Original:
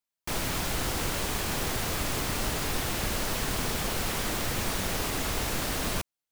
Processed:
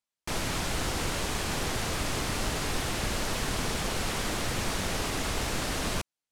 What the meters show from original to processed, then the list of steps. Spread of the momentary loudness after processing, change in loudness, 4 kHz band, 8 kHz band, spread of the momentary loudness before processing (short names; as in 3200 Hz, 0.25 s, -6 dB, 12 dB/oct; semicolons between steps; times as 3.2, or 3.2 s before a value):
0 LU, -1.0 dB, 0.0 dB, -1.5 dB, 0 LU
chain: LPF 10000 Hz 12 dB/oct